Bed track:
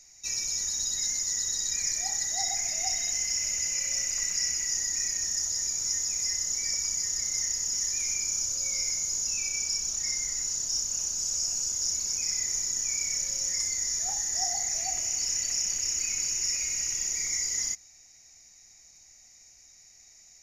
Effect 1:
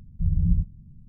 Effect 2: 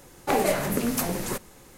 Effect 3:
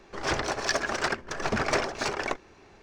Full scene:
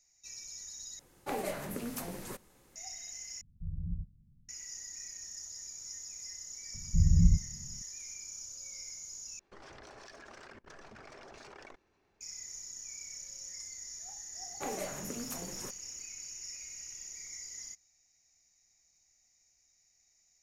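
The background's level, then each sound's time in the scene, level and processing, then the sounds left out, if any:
bed track -15.5 dB
0.99 s: replace with 2 -13 dB
3.41 s: replace with 1 -16 dB
6.74 s: add 1 -1.5 dB
9.39 s: replace with 3 -8 dB + level held to a coarse grid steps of 22 dB
14.33 s: add 2 -15.5 dB, fades 0.10 s

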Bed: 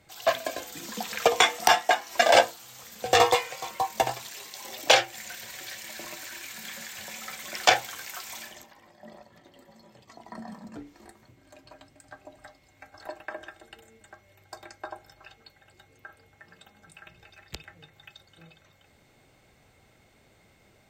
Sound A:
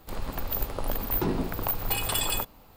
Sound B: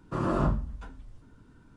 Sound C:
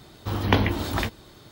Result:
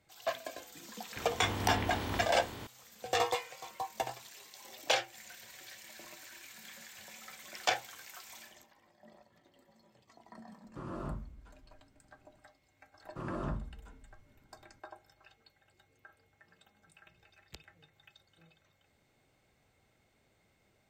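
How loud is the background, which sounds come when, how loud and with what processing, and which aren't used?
bed -11 dB
1.16 s: add C -16 dB + spectral levelling over time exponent 0.4
10.64 s: add B -14 dB
13.04 s: add B -11 dB
not used: A

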